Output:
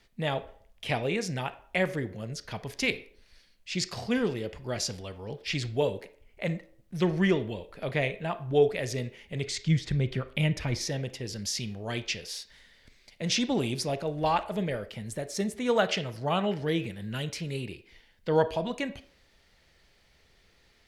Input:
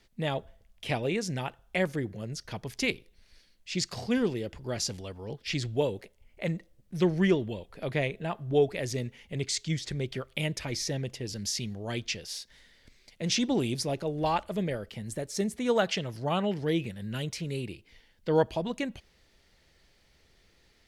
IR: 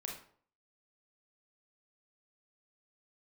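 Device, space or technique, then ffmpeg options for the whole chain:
filtered reverb send: -filter_complex "[0:a]asettb=1/sr,asplit=3[a][b][c];[a]atrim=end=9.464[d];[b]atrim=start=9.46:end=10.81,asetpts=PTS-STARTPTS,afade=t=in:d=0.004:c=qsin,afade=t=out:st=1.346:d=0.004:c=qsin,bass=f=250:g=8,treble=f=4k:g=-5[e];[c]atrim=start=10.806[f];[d][e]acrossfade=d=0.004:c1=hsin:c2=qsin[g];[g][f]acrossfade=d=0.004:c1=qsin:c2=hsin,asplit=2[h][i];[i]highpass=f=310:w=0.5412,highpass=f=310:w=1.3066,lowpass=4.5k[j];[1:a]atrim=start_sample=2205[k];[j][k]afir=irnorm=-1:irlink=0,volume=-6.5dB[l];[h][l]amix=inputs=2:normalize=0"

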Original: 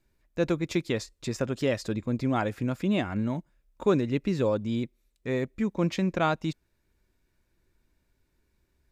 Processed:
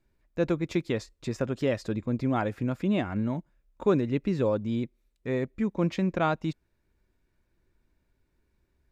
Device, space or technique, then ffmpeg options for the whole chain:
behind a face mask: -af "highshelf=f=3.4k:g=-8"

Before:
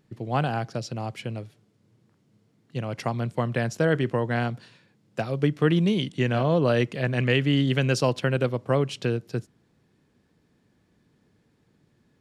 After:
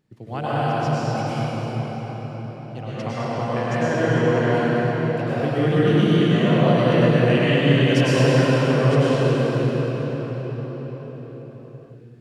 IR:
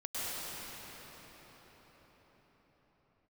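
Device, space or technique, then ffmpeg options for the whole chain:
cathedral: -filter_complex "[1:a]atrim=start_sample=2205[a];[0:a][a]afir=irnorm=-1:irlink=0,asettb=1/sr,asplit=3[b][c][d];[b]atrim=end=2.824[e];[c]atrim=start=2.82:end=4.54,asetpts=PTS-STARTPTS,afade=t=in:d=0.004:c=qsin,afade=t=out:st=1.716:d=0.004:c=qsin,lowpass=7.8k[f];[d]atrim=start=4.536[g];[e][f]acrossfade=d=0.004:c1=hsin:c2=qsin[h];[h][g]acrossfade=d=0.004:c1=qsin:c2=hsin"

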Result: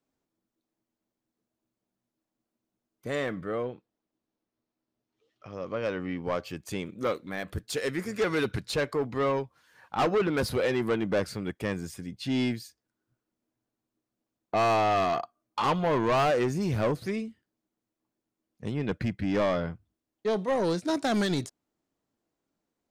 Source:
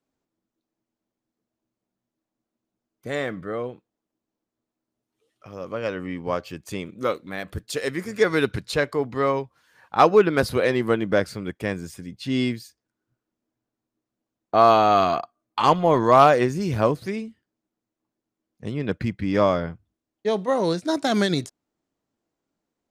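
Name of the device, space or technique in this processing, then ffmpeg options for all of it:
saturation between pre-emphasis and de-emphasis: -filter_complex "[0:a]asettb=1/sr,asplit=3[a][b][c];[a]atrim=end=3.644[d];[b]atrim=start=3.64:end=6.22,asetpts=PTS-STARTPTS,afade=t=in:d=0.004:c=qsin,afade=t=out:st=2.576:d=0.004:c=qsin,lowpass=f=6.1k:w=0.5412,lowpass=f=6.1k:w=1.3066[e];[c]atrim=start=6.216[f];[d][e]acrossfade=d=0.004:c1=hsin:c2=qsin[g];[g][f]acrossfade=d=0.004:c1=qsin:c2=hsin,highshelf=f=6.7k:g=10,asoftclip=type=tanh:threshold=-19.5dB,highshelf=f=6.7k:g=-10,volume=-1.5dB"

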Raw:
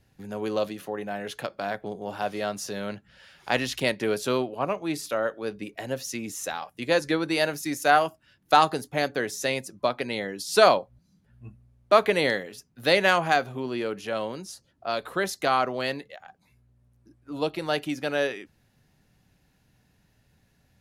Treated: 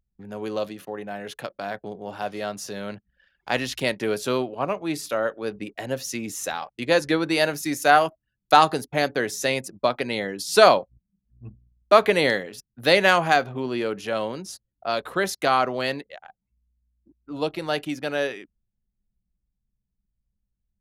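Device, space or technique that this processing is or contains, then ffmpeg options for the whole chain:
voice memo with heavy noise removal: -af "anlmdn=0.0158,dynaudnorm=f=530:g=17:m=11.5dB,volume=-1dB"

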